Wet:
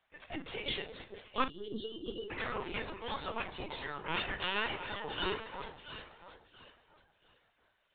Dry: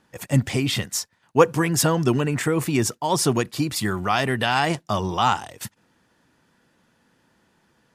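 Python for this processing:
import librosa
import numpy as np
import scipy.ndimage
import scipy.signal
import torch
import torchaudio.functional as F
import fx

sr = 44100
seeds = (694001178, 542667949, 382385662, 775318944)

p1 = fx.highpass(x, sr, hz=51.0, slope=6)
p2 = p1 + fx.echo_alternate(p1, sr, ms=340, hz=850.0, feedback_pct=54, wet_db=-5, dry=0)
p3 = fx.spec_gate(p2, sr, threshold_db=-10, keep='weak')
p4 = fx.hum_notches(p3, sr, base_hz=60, count=4)
p5 = fx.dynamic_eq(p4, sr, hz=240.0, q=6.9, threshold_db=-55.0, ratio=4.0, max_db=4)
p6 = fx.pitch_keep_formants(p5, sr, semitones=7.5)
p7 = fx.comb_fb(p6, sr, f0_hz=150.0, decay_s=1.5, harmonics='all', damping=0.0, mix_pct=60)
p8 = fx.spec_box(p7, sr, start_s=1.45, length_s=0.86, low_hz=480.0, high_hz=2800.0, gain_db=-28)
p9 = fx.doubler(p8, sr, ms=42.0, db=-12.0)
y = fx.lpc_vocoder(p9, sr, seeds[0], excitation='pitch_kept', order=16)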